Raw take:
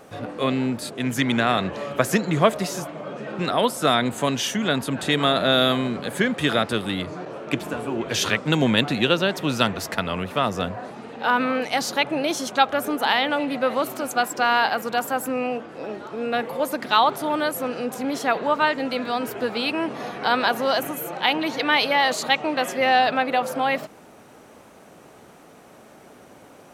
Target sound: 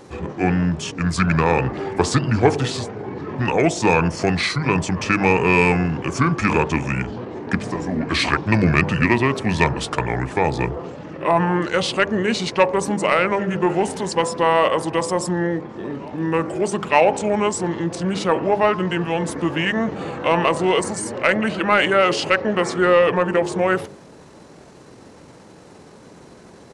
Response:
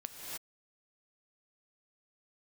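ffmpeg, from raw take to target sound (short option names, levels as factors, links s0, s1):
-af "asetrate=30296,aresample=44100,atempo=1.45565,acontrast=43,bandreject=f=50.1:t=h:w=4,bandreject=f=100.2:t=h:w=4,bandreject=f=150.3:t=h:w=4,bandreject=f=200.4:t=h:w=4,bandreject=f=250.5:t=h:w=4,bandreject=f=300.6:t=h:w=4,bandreject=f=350.7:t=h:w=4,bandreject=f=400.8:t=h:w=4,bandreject=f=450.9:t=h:w=4,bandreject=f=501:t=h:w=4,bandreject=f=551.1:t=h:w=4,bandreject=f=601.2:t=h:w=4,bandreject=f=651.3:t=h:w=4,bandreject=f=701.4:t=h:w=4,bandreject=f=751.5:t=h:w=4,bandreject=f=801.6:t=h:w=4,bandreject=f=851.7:t=h:w=4,bandreject=f=901.8:t=h:w=4,bandreject=f=951.9:t=h:w=4,bandreject=f=1002:t=h:w=4,bandreject=f=1052.1:t=h:w=4,bandreject=f=1102.2:t=h:w=4,bandreject=f=1152.3:t=h:w=4,volume=0.891"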